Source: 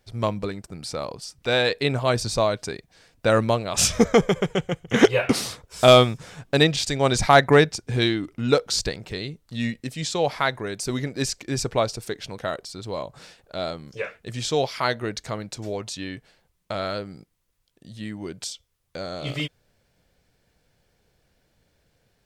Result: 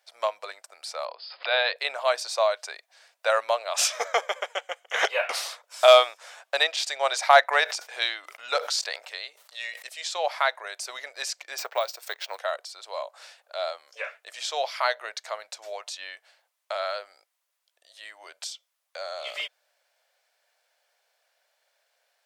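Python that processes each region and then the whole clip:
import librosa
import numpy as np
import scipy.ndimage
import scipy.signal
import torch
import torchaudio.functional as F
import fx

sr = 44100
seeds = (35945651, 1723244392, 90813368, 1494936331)

y = fx.chain(x, sr, fx.brickwall_lowpass(high_hz=5200.0),
    fx.hum_notches(base_hz=60, count=9),
    fx.pre_swell(db_per_s=93.0), at=(1.05, 1.76))
y = fx.chain(y, sr, fx.low_shelf(hz=480.0, db=-3.5),
    fx.sustainer(db_per_s=86.0), at=(7.48, 9.89))
y = fx.chain(y, sr, fx.law_mismatch(coded='A'),
    fx.resample_bad(factor=2, down='filtered', up='hold'),
    fx.band_squash(depth_pct=100), at=(11.58, 12.39))
y = fx.dynamic_eq(y, sr, hz=9100.0, q=0.72, threshold_db=-42.0, ratio=4.0, max_db=-4)
y = scipy.signal.sosfilt(scipy.signal.ellip(4, 1.0, 80, 600.0, 'highpass', fs=sr, output='sos'), y)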